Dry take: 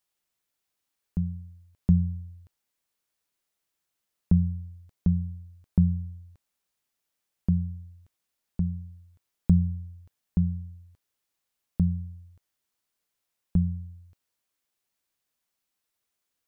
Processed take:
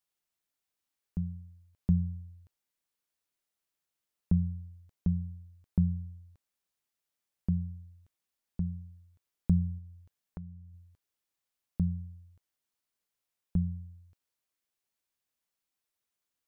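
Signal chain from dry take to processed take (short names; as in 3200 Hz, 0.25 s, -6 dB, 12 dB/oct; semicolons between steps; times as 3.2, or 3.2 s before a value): 9.78–10.74 compressor 3:1, threshold -39 dBFS, peak gain reduction 15 dB; gain -5.5 dB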